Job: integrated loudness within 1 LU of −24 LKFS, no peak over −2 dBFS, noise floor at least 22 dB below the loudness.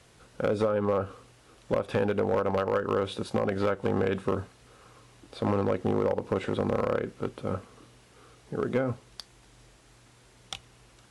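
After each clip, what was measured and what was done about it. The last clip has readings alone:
share of clipped samples 0.6%; peaks flattened at −18.5 dBFS; integrated loudness −29.0 LKFS; sample peak −18.5 dBFS; target loudness −24.0 LKFS
→ clipped peaks rebuilt −18.5 dBFS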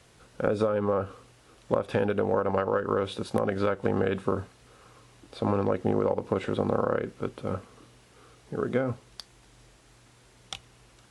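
share of clipped samples 0.0%; integrated loudness −28.5 LKFS; sample peak −9.5 dBFS; target loudness −24.0 LKFS
→ level +4.5 dB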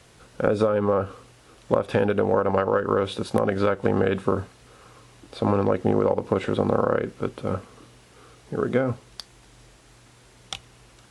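integrated loudness −24.0 LKFS; sample peak −5.0 dBFS; background noise floor −54 dBFS

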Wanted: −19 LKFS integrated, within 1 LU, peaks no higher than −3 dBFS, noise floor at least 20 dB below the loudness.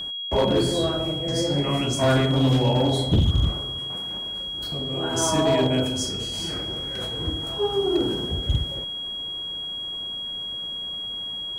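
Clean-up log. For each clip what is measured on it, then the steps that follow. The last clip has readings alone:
share of clipped samples 1.1%; peaks flattened at −14.0 dBFS; interfering tone 3,300 Hz; level of the tone −29 dBFS; integrated loudness −24.0 LKFS; sample peak −14.0 dBFS; target loudness −19.0 LKFS
→ clipped peaks rebuilt −14 dBFS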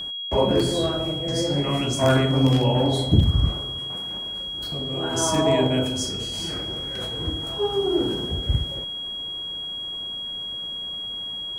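share of clipped samples 0.0%; interfering tone 3,300 Hz; level of the tone −29 dBFS
→ notch filter 3,300 Hz, Q 30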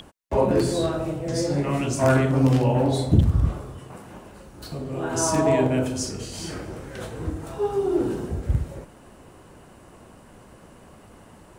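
interfering tone none found; integrated loudness −23.5 LKFS; sample peak −6.0 dBFS; target loudness −19.0 LKFS
→ level +4.5 dB
brickwall limiter −3 dBFS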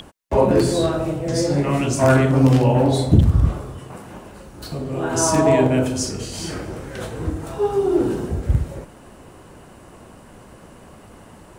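integrated loudness −19.0 LKFS; sample peak −3.0 dBFS; background noise floor −45 dBFS

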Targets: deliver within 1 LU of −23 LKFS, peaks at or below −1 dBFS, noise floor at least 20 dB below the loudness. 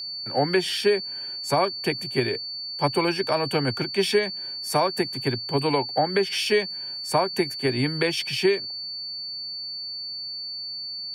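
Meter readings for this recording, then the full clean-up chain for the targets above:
interfering tone 4,500 Hz; level of the tone −31 dBFS; integrated loudness −25.0 LKFS; sample peak −9.5 dBFS; target loudness −23.0 LKFS
→ notch filter 4,500 Hz, Q 30
level +2 dB

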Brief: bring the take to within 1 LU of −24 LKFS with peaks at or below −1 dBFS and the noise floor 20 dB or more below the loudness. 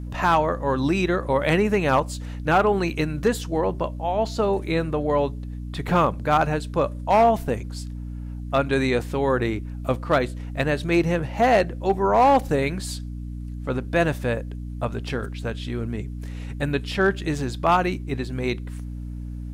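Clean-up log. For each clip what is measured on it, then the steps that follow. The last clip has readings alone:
share of clipped samples 0.4%; peaks flattened at −11.0 dBFS; mains hum 60 Hz; hum harmonics up to 300 Hz; level of the hum −30 dBFS; integrated loudness −23.0 LKFS; sample peak −11.0 dBFS; target loudness −24.0 LKFS
→ clipped peaks rebuilt −11 dBFS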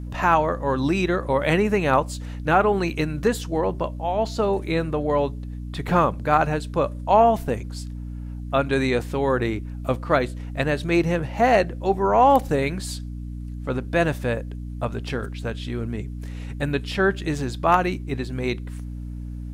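share of clipped samples 0.0%; mains hum 60 Hz; hum harmonics up to 300 Hz; level of the hum −30 dBFS
→ hum removal 60 Hz, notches 5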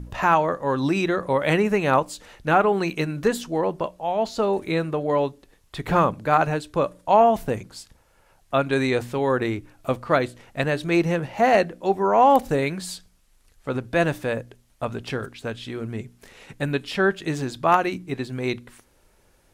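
mains hum none found; integrated loudness −23.0 LKFS; sample peak −2.0 dBFS; target loudness −24.0 LKFS
→ level −1 dB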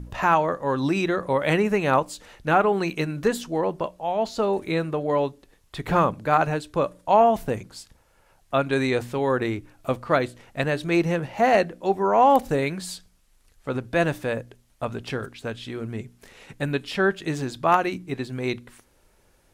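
integrated loudness −24.0 LKFS; sample peak −3.0 dBFS; background noise floor −61 dBFS

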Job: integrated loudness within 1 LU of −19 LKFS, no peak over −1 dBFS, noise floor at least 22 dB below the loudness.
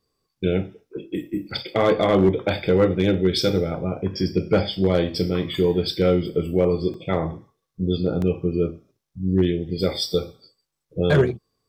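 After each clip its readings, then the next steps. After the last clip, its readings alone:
share of clipped samples 0.7%; peaks flattened at −10.0 dBFS; number of dropouts 3; longest dropout 1.9 ms; integrated loudness −22.5 LKFS; sample peak −10.0 dBFS; target loudness −19.0 LKFS
→ clipped peaks rebuilt −10 dBFS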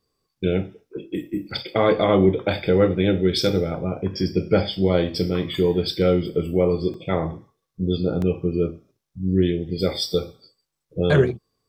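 share of clipped samples 0.0%; number of dropouts 3; longest dropout 1.9 ms
→ repair the gap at 0:01.51/0:06.94/0:08.22, 1.9 ms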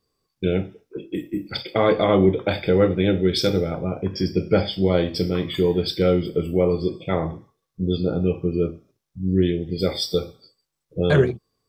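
number of dropouts 0; integrated loudness −22.0 LKFS; sample peak −5.0 dBFS; target loudness −19.0 LKFS
→ level +3 dB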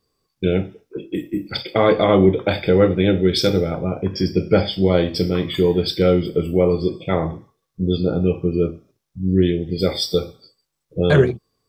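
integrated loudness −19.0 LKFS; sample peak −2.0 dBFS; background noise floor −75 dBFS

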